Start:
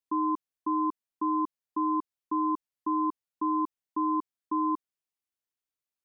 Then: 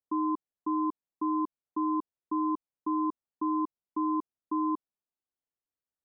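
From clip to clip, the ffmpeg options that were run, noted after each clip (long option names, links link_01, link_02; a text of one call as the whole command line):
ffmpeg -i in.wav -af "lowpass=1000" out.wav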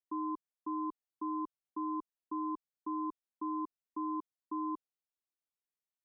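ffmpeg -i in.wav -af "equalizer=frequency=79:width_type=o:width=2.1:gain=-9.5,volume=-6.5dB" out.wav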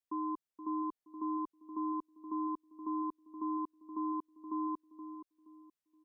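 ffmpeg -i in.wav -filter_complex "[0:a]asplit=2[link_01][link_02];[link_02]adelay=473,lowpass=frequency=820:poles=1,volume=-9dB,asplit=2[link_03][link_04];[link_04]adelay=473,lowpass=frequency=820:poles=1,volume=0.33,asplit=2[link_05][link_06];[link_06]adelay=473,lowpass=frequency=820:poles=1,volume=0.33,asplit=2[link_07][link_08];[link_08]adelay=473,lowpass=frequency=820:poles=1,volume=0.33[link_09];[link_01][link_03][link_05][link_07][link_09]amix=inputs=5:normalize=0" out.wav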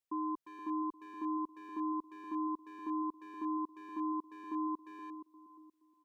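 ffmpeg -i in.wav -filter_complex "[0:a]asplit=2[link_01][link_02];[link_02]adelay=350,highpass=300,lowpass=3400,asoftclip=type=hard:threshold=-39dB,volume=-9dB[link_03];[link_01][link_03]amix=inputs=2:normalize=0" out.wav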